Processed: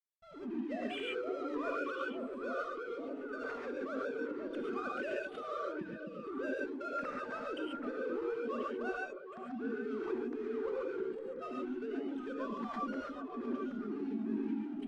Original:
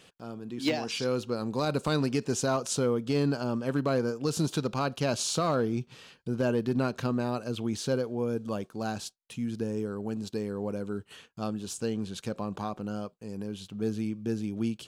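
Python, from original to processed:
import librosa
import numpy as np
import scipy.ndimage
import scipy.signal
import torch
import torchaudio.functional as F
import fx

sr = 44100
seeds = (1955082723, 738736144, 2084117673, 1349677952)

p1 = fx.sine_speech(x, sr)
p2 = fx.env_lowpass_down(p1, sr, base_hz=1900.0, full_db=-24.5)
p3 = fx.band_shelf(p2, sr, hz=680.0, db=-9.0, octaves=1.2)
p4 = fx.env_lowpass(p3, sr, base_hz=1800.0, full_db=-28.5)
p5 = fx.over_compress(p4, sr, threshold_db=-36.0, ratio=-1.0)
p6 = fx.backlash(p5, sr, play_db=-40.5)
p7 = fx.air_absorb(p6, sr, metres=50.0)
p8 = p7 + fx.echo_stepped(p7, sr, ms=258, hz=210.0, octaves=1.4, feedback_pct=70, wet_db=-2, dry=0)
p9 = fx.rev_gated(p8, sr, seeds[0], gate_ms=160, shape='rising', drr_db=-2.5)
p10 = fx.pre_swell(p9, sr, db_per_s=110.0)
y = p10 * 10.0 ** (-6.5 / 20.0)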